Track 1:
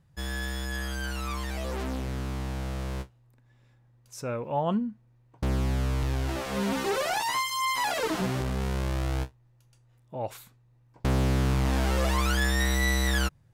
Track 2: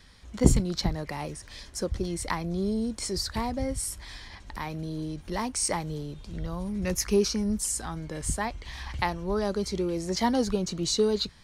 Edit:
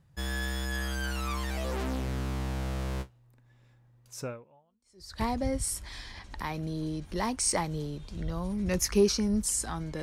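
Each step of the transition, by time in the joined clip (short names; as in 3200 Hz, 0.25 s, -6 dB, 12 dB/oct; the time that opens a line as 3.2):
track 1
4.73 switch to track 2 from 2.89 s, crossfade 0.98 s exponential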